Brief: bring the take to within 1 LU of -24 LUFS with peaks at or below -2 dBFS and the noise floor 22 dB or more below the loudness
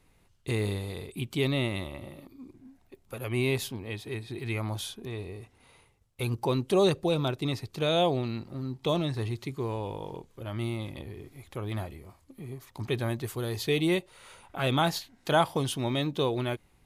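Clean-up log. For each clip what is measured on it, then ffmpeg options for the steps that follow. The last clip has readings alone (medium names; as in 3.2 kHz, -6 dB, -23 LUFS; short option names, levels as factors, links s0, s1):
loudness -30.5 LUFS; peak level -12.0 dBFS; loudness target -24.0 LUFS
-> -af "volume=2.11"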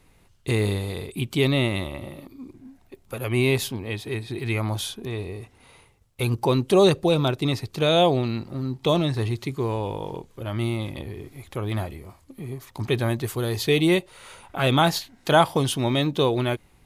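loudness -24.0 LUFS; peak level -5.5 dBFS; noise floor -58 dBFS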